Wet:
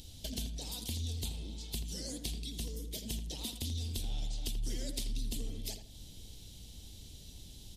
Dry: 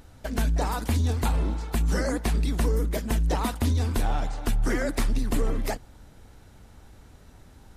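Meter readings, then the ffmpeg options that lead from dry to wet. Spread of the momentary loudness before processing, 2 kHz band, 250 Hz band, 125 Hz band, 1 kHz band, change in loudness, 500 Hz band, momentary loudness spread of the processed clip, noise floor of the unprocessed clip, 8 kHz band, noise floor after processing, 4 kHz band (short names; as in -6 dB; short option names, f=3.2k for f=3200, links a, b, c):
4 LU, -20.0 dB, -15.0 dB, -14.0 dB, -26.0 dB, -12.5 dB, -19.0 dB, 13 LU, -52 dBFS, -4.0 dB, -52 dBFS, -1.5 dB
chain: -filter_complex "[0:a]firequalizer=gain_entry='entry(120,0);entry(1300,-22);entry(3200,13);entry(7700,9)':delay=0.05:min_phase=1,acompressor=threshold=-37dB:ratio=4,asplit=2[a][b];[b]adelay=82,lowpass=f=2.4k:p=1,volume=-7.5dB,asplit=2[c][d];[d]adelay=82,lowpass=f=2.4k:p=1,volume=0.32,asplit=2[e][f];[f]adelay=82,lowpass=f=2.4k:p=1,volume=0.32,asplit=2[g][h];[h]adelay=82,lowpass=f=2.4k:p=1,volume=0.32[i];[a][c][e][g][i]amix=inputs=5:normalize=0,volume=-1.5dB"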